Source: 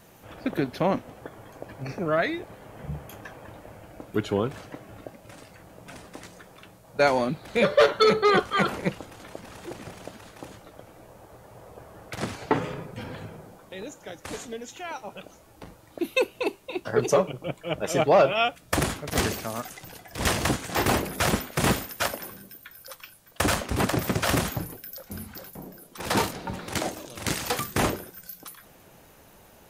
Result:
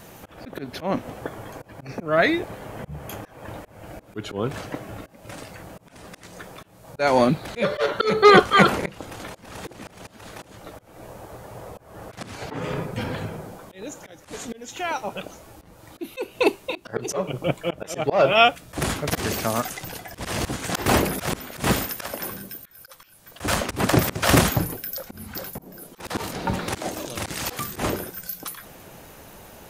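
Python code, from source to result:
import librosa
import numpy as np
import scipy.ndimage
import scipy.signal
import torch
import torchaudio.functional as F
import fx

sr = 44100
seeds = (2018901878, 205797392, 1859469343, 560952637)

y = fx.auto_swell(x, sr, attack_ms=264.0)
y = y * librosa.db_to_amplitude(8.5)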